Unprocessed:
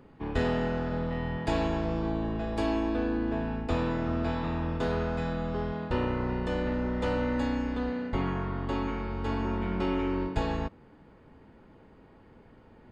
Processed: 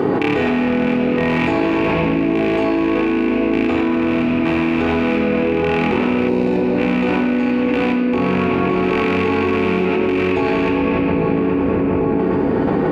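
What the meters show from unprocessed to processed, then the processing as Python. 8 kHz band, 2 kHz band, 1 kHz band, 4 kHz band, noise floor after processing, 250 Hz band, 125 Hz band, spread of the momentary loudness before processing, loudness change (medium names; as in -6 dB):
no reading, +16.5 dB, +12.5 dB, +13.0 dB, -18 dBFS, +15.5 dB, +8.5 dB, 4 LU, +13.5 dB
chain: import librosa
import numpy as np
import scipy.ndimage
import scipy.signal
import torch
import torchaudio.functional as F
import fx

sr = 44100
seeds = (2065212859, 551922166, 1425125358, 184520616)

p1 = fx.rattle_buzz(x, sr, strikes_db=-35.0, level_db=-20.0)
p2 = scipy.signal.sosfilt(scipy.signal.butter(2, 310.0, 'highpass', fs=sr, output='sos'), p1)
p3 = fx.low_shelf(p2, sr, hz=490.0, db=11.0)
p4 = fx.step_gate(p3, sr, bpm=64, pattern='.xxx.xxx..xxxx', floor_db=-12.0, edge_ms=4.5)
p5 = fx.room_shoebox(p4, sr, seeds[0], volume_m3=2700.0, walls='mixed', distance_m=3.6)
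p6 = fx.spec_box(p5, sr, start_s=6.29, length_s=0.48, low_hz=1000.0, high_hz=3600.0, gain_db=-8)
p7 = fx.high_shelf(p6, sr, hz=4500.0, db=-11.0)
p8 = fx.rider(p7, sr, range_db=10, speed_s=0.5)
p9 = p8 + fx.echo_filtered(p8, sr, ms=820, feedback_pct=50, hz=1200.0, wet_db=-12, dry=0)
p10 = fx.env_flatten(p9, sr, amount_pct=100)
y = p10 * librosa.db_to_amplitude(1.0)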